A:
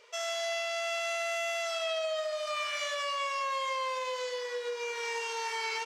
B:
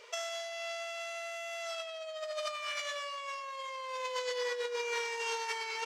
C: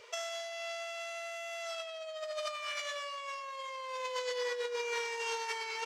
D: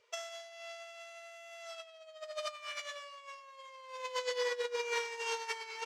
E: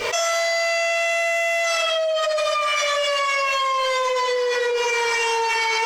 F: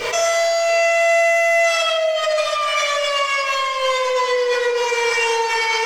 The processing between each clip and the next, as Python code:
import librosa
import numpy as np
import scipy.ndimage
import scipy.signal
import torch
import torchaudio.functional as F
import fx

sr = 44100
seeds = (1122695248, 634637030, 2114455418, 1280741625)

y1 = fx.over_compress(x, sr, threshold_db=-37.0, ratio=-0.5)
y2 = fx.peak_eq(y1, sr, hz=95.0, db=11.0, octaves=1.6)
y2 = F.gain(torch.from_numpy(y2), -1.0).numpy()
y3 = fx.upward_expand(y2, sr, threshold_db=-46.0, expansion=2.5)
y3 = F.gain(torch.from_numpy(y3), 2.5).numpy()
y4 = fx.room_shoebox(y3, sr, seeds[0], volume_m3=230.0, walls='furnished', distance_m=3.7)
y4 = fx.env_flatten(y4, sr, amount_pct=100)
y5 = y4 + 10.0 ** (-15.0 / 20.0) * np.pad(y4, (int(684 * sr / 1000.0), 0))[:len(y4)]
y5 = fx.room_shoebox(y5, sr, seeds[1], volume_m3=490.0, walls='mixed', distance_m=0.68)
y5 = F.gain(torch.from_numpy(y5), 1.0).numpy()